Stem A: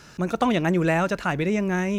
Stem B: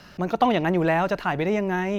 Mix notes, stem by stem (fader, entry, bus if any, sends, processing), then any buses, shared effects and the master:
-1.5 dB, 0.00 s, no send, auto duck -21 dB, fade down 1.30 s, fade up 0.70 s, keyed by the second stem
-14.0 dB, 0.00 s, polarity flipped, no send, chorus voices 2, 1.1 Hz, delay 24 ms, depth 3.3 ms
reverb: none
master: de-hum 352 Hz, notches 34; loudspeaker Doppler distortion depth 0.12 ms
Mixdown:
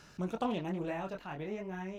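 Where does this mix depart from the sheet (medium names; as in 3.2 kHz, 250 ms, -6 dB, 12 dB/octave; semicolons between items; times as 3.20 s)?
stem A -1.5 dB -> -9.0 dB; stem B: polarity flipped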